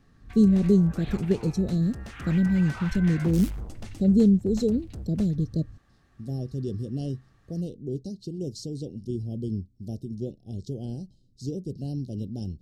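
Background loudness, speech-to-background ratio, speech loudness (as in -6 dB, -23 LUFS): -40.5 LUFS, 14.0 dB, -26.5 LUFS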